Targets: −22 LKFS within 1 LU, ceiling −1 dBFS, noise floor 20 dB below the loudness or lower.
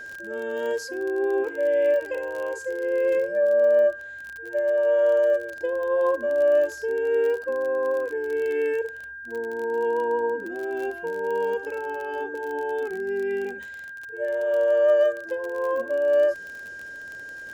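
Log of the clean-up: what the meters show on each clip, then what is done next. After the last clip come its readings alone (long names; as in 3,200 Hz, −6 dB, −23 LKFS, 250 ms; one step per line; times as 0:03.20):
crackle rate 33 per second; interfering tone 1,600 Hz; level of the tone −36 dBFS; integrated loudness −24.5 LKFS; sample peak −11.0 dBFS; target loudness −22.0 LKFS
→ click removal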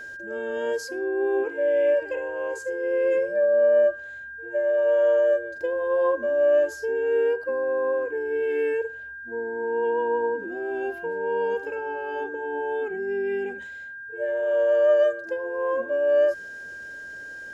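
crackle rate 0.11 per second; interfering tone 1,600 Hz; level of the tone −36 dBFS
→ notch filter 1,600 Hz, Q 30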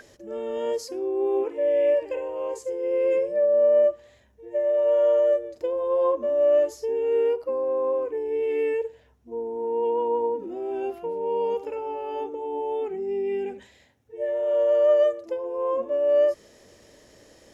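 interfering tone none found; integrated loudness −24.5 LKFS; sample peak −11.5 dBFS; target loudness −22.0 LKFS
→ level +2.5 dB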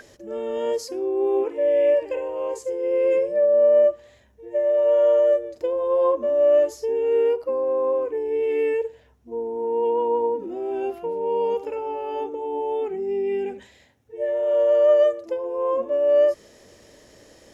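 integrated loudness −22.0 LKFS; sample peak −9.0 dBFS; background noise floor −54 dBFS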